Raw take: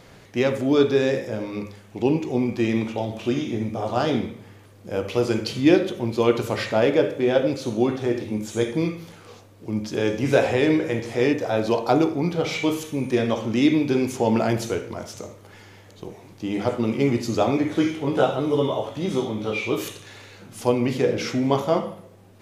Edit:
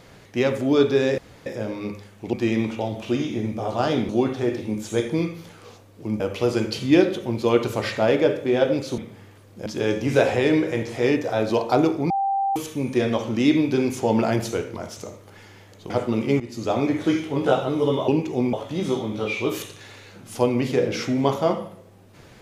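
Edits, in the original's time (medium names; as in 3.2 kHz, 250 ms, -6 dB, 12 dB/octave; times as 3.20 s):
1.18 s: insert room tone 0.28 s
2.05–2.50 s: move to 18.79 s
4.26–4.94 s: swap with 7.72–9.83 s
12.27–12.73 s: bleep 786 Hz -19.5 dBFS
16.07–16.61 s: delete
17.11–17.57 s: fade in, from -15.5 dB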